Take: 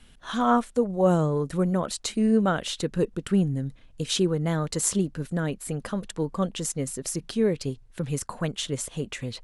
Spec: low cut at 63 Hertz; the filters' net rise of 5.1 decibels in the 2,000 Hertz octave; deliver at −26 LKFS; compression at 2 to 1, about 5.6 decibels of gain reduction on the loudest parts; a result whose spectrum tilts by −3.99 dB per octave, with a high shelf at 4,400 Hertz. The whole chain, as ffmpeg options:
ffmpeg -i in.wav -af "highpass=63,equalizer=frequency=2000:width_type=o:gain=6,highshelf=frequency=4400:gain=6.5,acompressor=threshold=-26dB:ratio=2,volume=3dB" out.wav

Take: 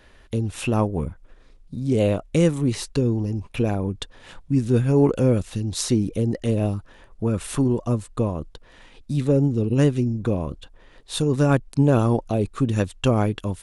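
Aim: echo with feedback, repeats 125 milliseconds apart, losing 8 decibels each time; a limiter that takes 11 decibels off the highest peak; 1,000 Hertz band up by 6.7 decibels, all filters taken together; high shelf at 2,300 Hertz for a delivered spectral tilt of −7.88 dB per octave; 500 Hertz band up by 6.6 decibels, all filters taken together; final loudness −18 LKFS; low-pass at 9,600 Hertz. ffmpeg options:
ffmpeg -i in.wav -af "lowpass=9600,equalizer=frequency=500:width_type=o:gain=6.5,equalizer=frequency=1000:width_type=o:gain=7.5,highshelf=frequency=2300:gain=-6,alimiter=limit=-14dB:level=0:latency=1,aecho=1:1:125|250|375|500|625:0.398|0.159|0.0637|0.0255|0.0102,volume=5.5dB" out.wav

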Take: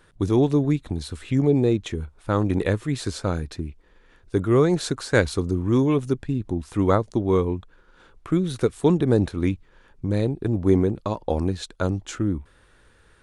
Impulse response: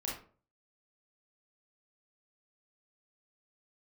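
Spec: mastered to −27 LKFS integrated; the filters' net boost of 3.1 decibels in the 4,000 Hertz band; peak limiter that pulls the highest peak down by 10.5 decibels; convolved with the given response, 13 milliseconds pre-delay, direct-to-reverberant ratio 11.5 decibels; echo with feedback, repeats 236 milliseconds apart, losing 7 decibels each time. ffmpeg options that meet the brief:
-filter_complex "[0:a]equalizer=frequency=4000:width_type=o:gain=3.5,alimiter=limit=-14dB:level=0:latency=1,aecho=1:1:236|472|708|944|1180:0.447|0.201|0.0905|0.0407|0.0183,asplit=2[link_01][link_02];[1:a]atrim=start_sample=2205,adelay=13[link_03];[link_02][link_03]afir=irnorm=-1:irlink=0,volume=-13.5dB[link_04];[link_01][link_04]amix=inputs=2:normalize=0,volume=-2dB"

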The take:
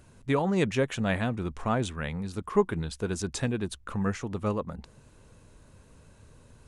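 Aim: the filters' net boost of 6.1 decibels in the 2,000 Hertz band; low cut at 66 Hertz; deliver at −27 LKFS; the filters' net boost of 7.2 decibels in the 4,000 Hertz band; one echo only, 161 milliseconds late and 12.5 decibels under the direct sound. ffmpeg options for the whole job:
ffmpeg -i in.wav -af "highpass=66,equalizer=frequency=2000:width_type=o:gain=6,equalizer=frequency=4000:width_type=o:gain=7,aecho=1:1:161:0.237,volume=1.5dB" out.wav

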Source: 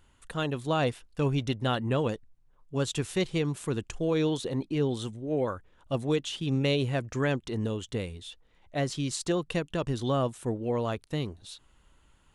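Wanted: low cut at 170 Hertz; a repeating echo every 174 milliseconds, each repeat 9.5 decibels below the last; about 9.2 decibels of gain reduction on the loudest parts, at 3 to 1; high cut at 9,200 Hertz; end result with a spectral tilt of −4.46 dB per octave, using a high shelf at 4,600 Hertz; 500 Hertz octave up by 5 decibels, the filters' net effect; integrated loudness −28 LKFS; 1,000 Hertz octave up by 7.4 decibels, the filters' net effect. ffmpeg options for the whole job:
ffmpeg -i in.wav -af "highpass=170,lowpass=9200,equalizer=frequency=500:width_type=o:gain=4,equalizer=frequency=1000:width_type=o:gain=8,highshelf=frequency=4600:gain=7,acompressor=threshold=-31dB:ratio=3,aecho=1:1:174|348|522|696:0.335|0.111|0.0365|0.012,volume=6.5dB" out.wav

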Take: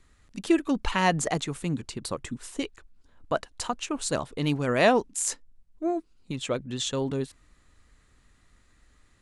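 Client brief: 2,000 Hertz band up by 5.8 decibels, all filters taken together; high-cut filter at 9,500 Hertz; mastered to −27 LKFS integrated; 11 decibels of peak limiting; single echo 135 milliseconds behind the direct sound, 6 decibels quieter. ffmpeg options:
ffmpeg -i in.wav -af "lowpass=9500,equalizer=frequency=2000:width_type=o:gain=7,alimiter=limit=-17dB:level=0:latency=1,aecho=1:1:135:0.501,volume=2.5dB" out.wav

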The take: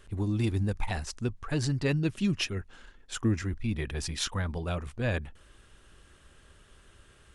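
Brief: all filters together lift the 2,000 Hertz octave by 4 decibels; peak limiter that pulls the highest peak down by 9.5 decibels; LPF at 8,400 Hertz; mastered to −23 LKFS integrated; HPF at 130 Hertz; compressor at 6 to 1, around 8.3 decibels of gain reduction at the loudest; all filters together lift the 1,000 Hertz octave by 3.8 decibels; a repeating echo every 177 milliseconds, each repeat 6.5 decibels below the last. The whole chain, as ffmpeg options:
ffmpeg -i in.wav -af "highpass=130,lowpass=8400,equalizer=frequency=1000:width_type=o:gain=4,equalizer=frequency=2000:width_type=o:gain=4,acompressor=threshold=-32dB:ratio=6,alimiter=level_in=4dB:limit=-24dB:level=0:latency=1,volume=-4dB,aecho=1:1:177|354|531|708|885|1062:0.473|0.222|0.105|0.0491|0.0231|0.0109,volume=15.5dB" out.wav

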